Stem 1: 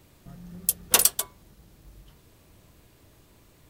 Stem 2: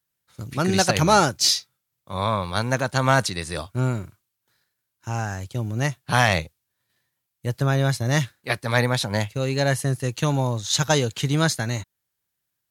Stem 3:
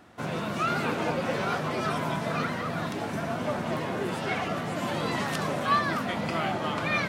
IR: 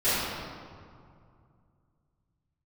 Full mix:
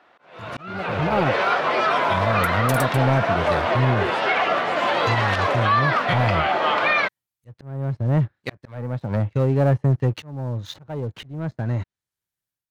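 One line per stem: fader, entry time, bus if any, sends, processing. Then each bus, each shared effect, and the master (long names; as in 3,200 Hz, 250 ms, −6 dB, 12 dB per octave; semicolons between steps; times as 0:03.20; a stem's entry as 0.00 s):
−15.0 dB, 1.75 s, no bus, no send, no processing
−14.5 dB, 0.00 s, bus A, no send, treble cut that deepens with the level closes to 790 Hz, closed at −19.5 dBFS; low-shelf EQ 120 Hz +4 dB; leveller curve on the samples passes 2
+1.0 dB, 0.00 s, bus A, no send, three-way crossover with the lows and the highs turned down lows −21 dB, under 420 Hz, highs −22 dB, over 4,400 Hz
bus A: 0.0 dB, automatic gain control gain up to 12 dB; brickwall limiter −10.5 dBFS, peak gain reduction 7.5 dB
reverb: not used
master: volume swells 670 ms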